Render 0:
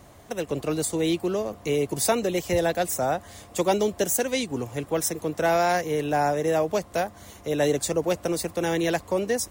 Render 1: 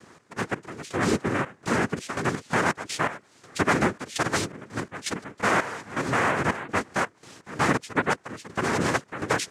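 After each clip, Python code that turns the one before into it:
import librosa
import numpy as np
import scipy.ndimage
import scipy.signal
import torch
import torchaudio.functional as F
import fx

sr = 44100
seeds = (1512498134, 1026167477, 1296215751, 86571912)

y = fx.noise_vocoder(x, sr, seeds[0], bands=3)
y = fx.step_gate(y, sr, bpm=83, pattern='x.x..xxx.xx.x.', floor_db=-12.0, edge_ms=4.5)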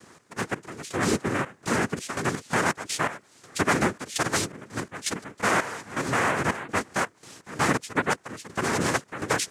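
y = fx.high_shelf(x, sr, hz=6300.0, db=8.5)
y = F.gain(torch.from_numpy(y), -1.0).numpy()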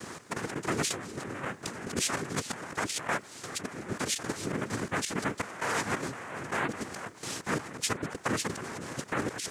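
y = fx.over_compress(x, sr, threshold_db=-37.0, ratio=-1.0)
y = F.gain(torch.from_numpy(y), 1.5).numpy()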